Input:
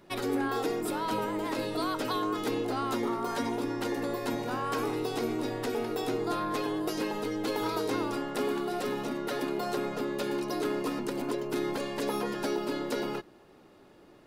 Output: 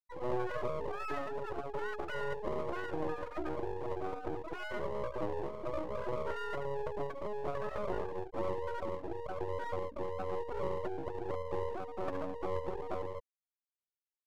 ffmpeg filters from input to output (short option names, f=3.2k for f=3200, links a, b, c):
-af "acrusher=bits=4:mode=log:mix=0:aa=0.000001,lowpass=f=1.1k:w=0.5412,lowpass=f=1.1k:w=1.3066,afftfilt=real='re*gte(hypot(re,im),0.1)':imag='im*gte(hypot(re,im),0.1)':win_size=1024:overlap=0.75,aeval=exprs='max(val(0),0)':c=same,asetrate=58866,aresample=44100,atempo=0.749154"